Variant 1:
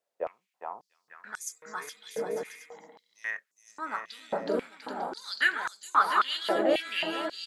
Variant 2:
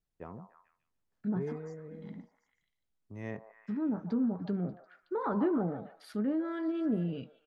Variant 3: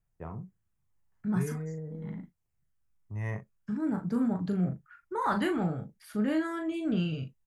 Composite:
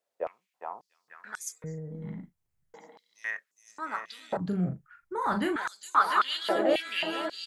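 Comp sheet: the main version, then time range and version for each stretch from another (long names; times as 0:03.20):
1
0:01.64–0:02.74: punch in from 3
0:04.37–0:05.56: punch in from 3
not used: 2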